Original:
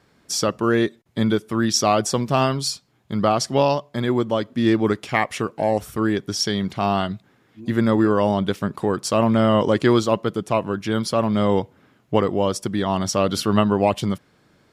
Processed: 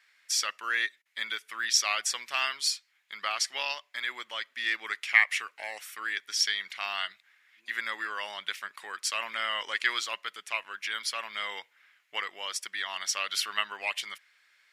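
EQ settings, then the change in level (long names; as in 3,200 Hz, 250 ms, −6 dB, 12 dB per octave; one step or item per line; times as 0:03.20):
high-pass with resonance 2,000 Hz, resonance Q 2.8
−4.0 dB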